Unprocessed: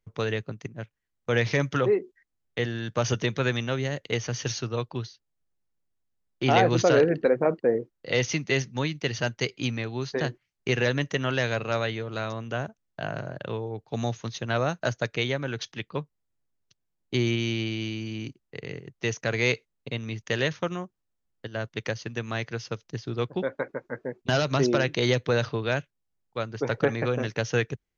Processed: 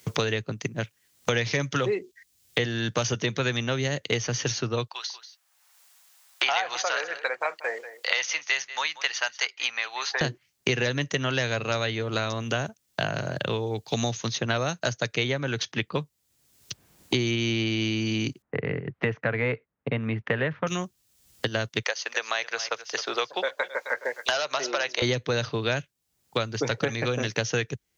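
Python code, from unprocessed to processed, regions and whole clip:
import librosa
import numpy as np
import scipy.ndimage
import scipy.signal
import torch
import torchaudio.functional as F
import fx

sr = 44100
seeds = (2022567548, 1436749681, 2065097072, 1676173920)

y = fx.chain(x, sr, fx.highpass(hz=810.0, slope=24),
    fx.echo_single(ms=187, db=-18.0), at=(4.87, 10.21))
y = fx.chain(y, sr, fx.lowpass(hz=1700.0, slope=24),
    fx.notch(hz=360.0, q=7.1), at=(18.42, 20.67))
y = fx.chain(y, sr, fx.highpass(hz=580.0, slope=24),
    fx.echo_single(ms=262, db=-17.5),
    fx.band_squash(depth_pct=40), at=(21.82, 25.02))
y = scipy.signal.sosfilt(scipy.signal.butter(2, 56.0, 'highpass', fs=sr, output='sos'), y)
y = fx.high_shelf(y, sr, hz=3400.0, db=7.5)
y = fx.band_squash(y, sr, depth_pct=100)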